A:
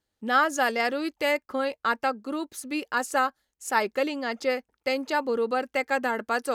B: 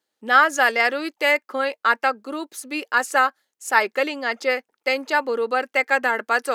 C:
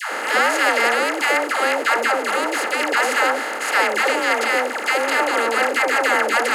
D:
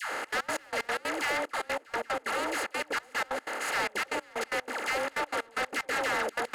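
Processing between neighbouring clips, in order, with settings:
HPF 320 Hz 12 dB/oct; dynamic EQ 1900 Hz, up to +6 dB, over -38 dBFS, Q 1.1; gain +3.5 dB
per-bin compression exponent 0.2; dispersion lows, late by 0.14 s, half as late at 630 Hz; dynamic EQ 1300 Hz, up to -5 dB, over -21 dBFS, Q 1.5; gain -4.5 dB
soft clip -17.5 dBFS, distortion -12 dB; step gate "xxx.x.x..x.x.xx" 186 bpm -24 dB; gain -7.5 dB

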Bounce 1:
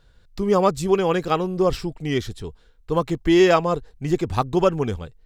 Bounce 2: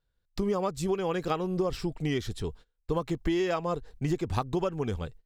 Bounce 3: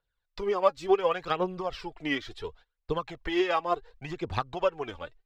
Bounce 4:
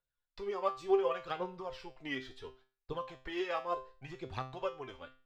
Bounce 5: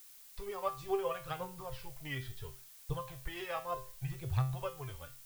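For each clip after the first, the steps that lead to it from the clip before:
gate -45 dBFS, range -23 dB; compressor 10:1, threshold -25 dBFS, peak gain reduction 14.5 dB
three-band isolator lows -14 dB, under 500 Hz, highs -20 dB, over 4600 Hz; phaser 0.7 Hz, delay 3.7 ms, feedback 58%; upward expander 1.5:1, over -39 dBFS; gain +7.5 dB
resonator 130 Hz, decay 0.36 s, harmonics all, mix 80%
resonant low shelf 170 Hz +10.5 dB, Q 3; notch 360 Hz, Q 12; added noise blue -54 dBFS; gain -2 dB

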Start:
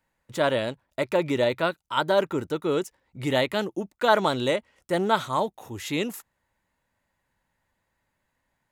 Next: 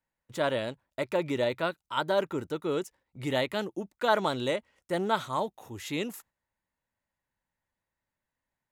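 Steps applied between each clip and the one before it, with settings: gate -52 dBFS, range -7 dB; gain -5 dB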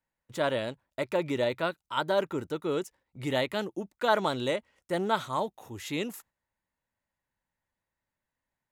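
nothing audible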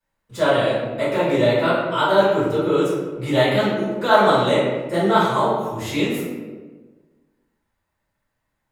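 reverb RT60 1.3 s, pre-delay 4 ms, DRR -12 dB; gain -2.5 dB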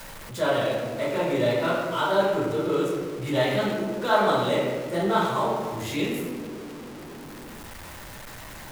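zero-crossing step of -27.5 dBFS; gain -7 dB

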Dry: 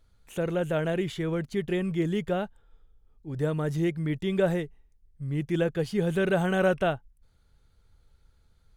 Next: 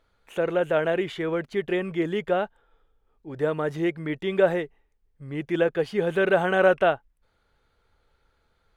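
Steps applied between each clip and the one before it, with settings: tone controls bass -15 dB, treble -13 dB; gain +6.5 dB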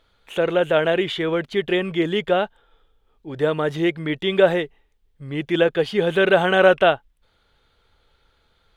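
bell 3400 Hz +8.5 dB 0.72 oct; gain +4.5 dB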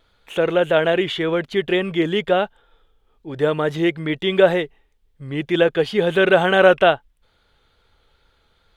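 wow and flutter 26 cents; gain +1.5 dB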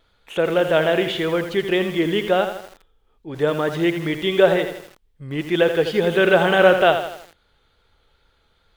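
lo-fi delay 82 ms, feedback 55%, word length 6-bit, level -8.5 dB; gain -1 dB

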